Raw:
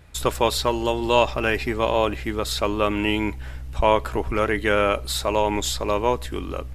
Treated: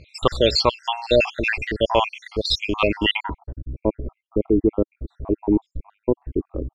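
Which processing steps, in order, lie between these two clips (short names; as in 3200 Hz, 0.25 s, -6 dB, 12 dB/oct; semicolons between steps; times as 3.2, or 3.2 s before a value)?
random spectral dropouts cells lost 68%; low-pass sweep 4400 Hz -> 330 Hz, 3.04–3.56; gain +4.5 dB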